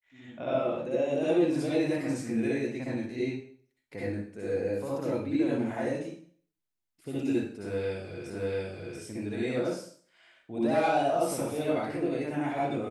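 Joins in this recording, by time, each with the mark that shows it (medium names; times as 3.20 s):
8.30 s: repeat of the last 0.69 s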